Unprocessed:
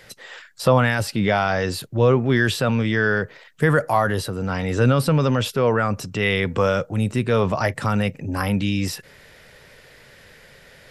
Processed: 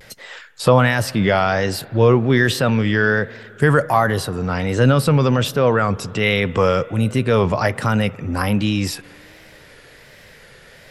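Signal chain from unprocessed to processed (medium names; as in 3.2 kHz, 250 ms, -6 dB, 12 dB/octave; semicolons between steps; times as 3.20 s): spring tank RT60 2.9 s, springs 56 ms, chirp 40 ms, DRR 19.5 dB; vibrato 1.3 Hz 81 cents; trim +3 dB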